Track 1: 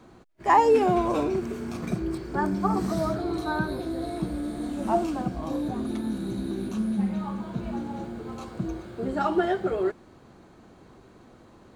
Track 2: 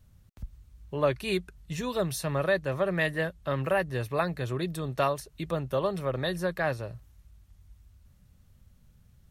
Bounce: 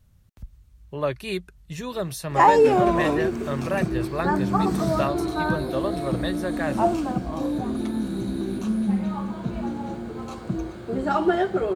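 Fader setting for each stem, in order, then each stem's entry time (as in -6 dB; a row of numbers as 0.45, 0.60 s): +3.0, 0.0 dB; 1.90, 0.00 s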